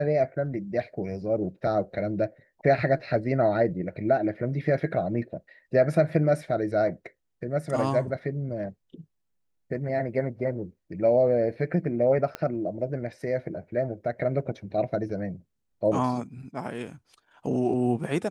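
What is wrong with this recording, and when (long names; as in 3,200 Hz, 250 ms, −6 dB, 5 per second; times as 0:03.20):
0:12.35: click −17 dBFS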